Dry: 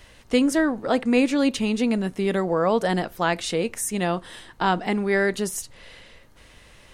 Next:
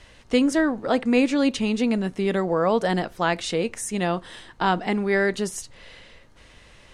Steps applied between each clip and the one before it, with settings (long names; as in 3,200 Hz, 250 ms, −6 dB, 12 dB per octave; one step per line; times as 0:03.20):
low-pass filter 8,400 Hz 12 dB per octave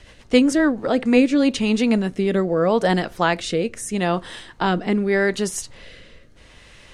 rotating-speaker cabinet horn 7.5 Hz, later 0.8 Hz, at 0:00.44
level +5.5 dB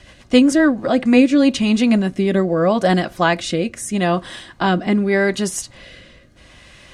notch comb filter 450 Hz
level +4 dB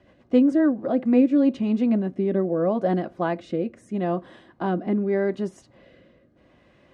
resonant band-pass 350 Hz, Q 0.74
level −4.5 dB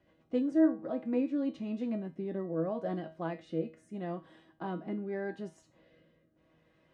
tuned comb filter 160 Hz, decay 0.31 s, harmonics all, mix 80%
level −2 dB